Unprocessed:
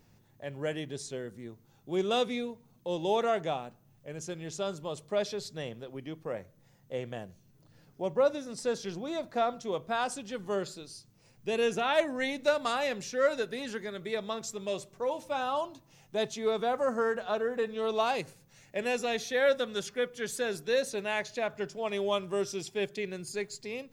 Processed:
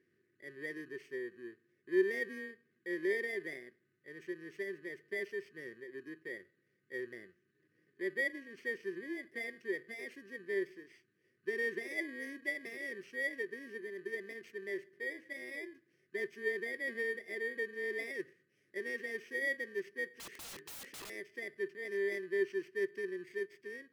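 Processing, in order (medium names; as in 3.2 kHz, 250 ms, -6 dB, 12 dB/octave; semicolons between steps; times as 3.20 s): bit-reversed sample order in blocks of 32 samples; two resonant band-passes 830 Hz, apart 2.3 oct; 20.09–21.10 s: integer overflow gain 46.5 dB; trim +3.5 dB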